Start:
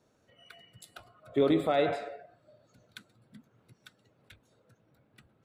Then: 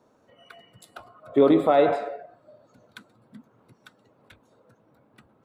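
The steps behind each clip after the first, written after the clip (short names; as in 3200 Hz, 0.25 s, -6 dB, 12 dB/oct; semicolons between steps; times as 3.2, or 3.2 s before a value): graphic EQ 250/500/1000 Hz +7/+5/+11 dB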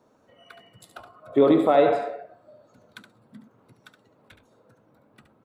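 echo 71 ms -9 dB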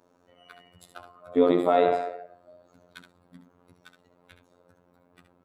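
robotiser 88.2 Hz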